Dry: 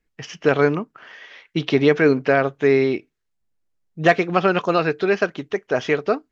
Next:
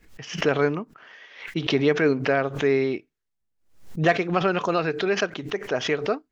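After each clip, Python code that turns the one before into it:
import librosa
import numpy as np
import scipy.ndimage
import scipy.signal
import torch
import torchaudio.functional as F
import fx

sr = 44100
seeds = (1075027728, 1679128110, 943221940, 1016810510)

y = fx.pre_swell(x, sr, db_per_s=110.0)
y = y * librosa.db_to_amplitude(-5.0)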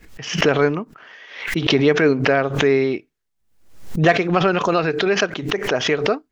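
y = fx.pre_swell(x, sr, db_per_s=84.0)
y = y * librosa.db_to_amplitude(4.5)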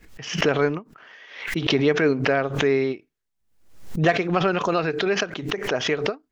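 y = fx.end_taper(x, sr, db_per_s=320.0)
y = y * librosa.db_to_amplitude(-4.0)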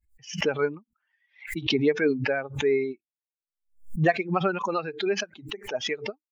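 y = fx.bin_expand(x, sr, power=2.0)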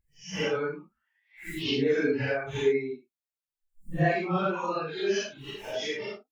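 y = fx.phase_scramble(x, sr, seeds[0], window_ms=200)
y = y * librosa.db_to_amplitude(-2.5)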